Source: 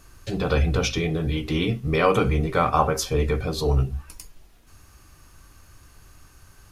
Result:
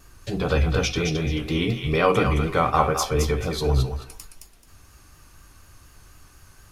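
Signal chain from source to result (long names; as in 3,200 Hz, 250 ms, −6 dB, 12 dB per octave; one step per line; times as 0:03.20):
pitch vibrato 4.1 Hz 44 cents
feedback echo with a high-pass in the loop 217 ms, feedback 25%, high-pass 1,000 Hz, level −4.5 dB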